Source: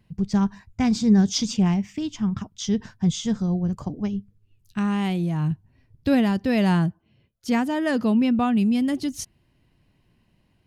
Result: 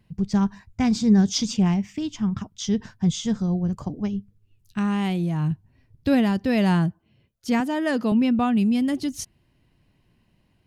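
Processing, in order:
0:07.60–0:08.12: high-pass filter 190 Hz

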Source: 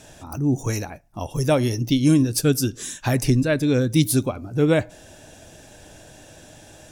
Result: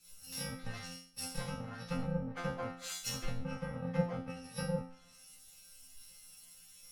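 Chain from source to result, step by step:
samples in bit-reversed order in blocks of 128 samples
treble cut that deepens with the level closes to 550 Hz, closed at −13.5 dBFS
brickwall limiter −21.5 dBFS, peak gain reduction 8 dB
resonators tuned to a chord F3 fifth, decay 0.6 s
multiband upward and downward expander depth 70%
level +13 dB

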